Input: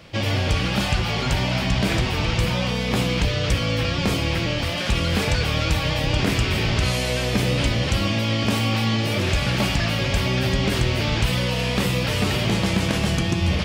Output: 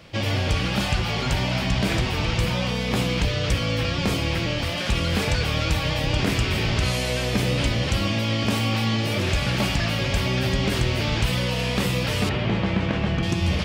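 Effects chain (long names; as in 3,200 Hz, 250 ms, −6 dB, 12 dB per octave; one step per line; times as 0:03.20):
0:12.29–0:13.23: low-pass filter 2,700 Hz 12 dB per octave
level −1.5 dB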